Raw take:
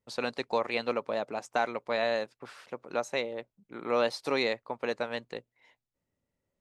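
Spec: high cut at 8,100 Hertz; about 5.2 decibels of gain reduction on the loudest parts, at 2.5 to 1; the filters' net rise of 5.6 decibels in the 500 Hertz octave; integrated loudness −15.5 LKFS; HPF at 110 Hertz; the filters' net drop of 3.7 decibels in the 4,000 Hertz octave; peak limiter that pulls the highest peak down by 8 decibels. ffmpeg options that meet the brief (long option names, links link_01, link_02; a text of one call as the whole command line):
ffmpeg -i in.wav -af "highpass=110,lowpass=8100,equalizer=frequency=500:width_type=o:gain=6.5,equalizer=frequency=4000:width_type=o:gain=-4,acompressor=threshold=-26dB:ratio=2.5,volume=19dB,alimiter=limit=-3.5dB:level=0:latency=1" out.wav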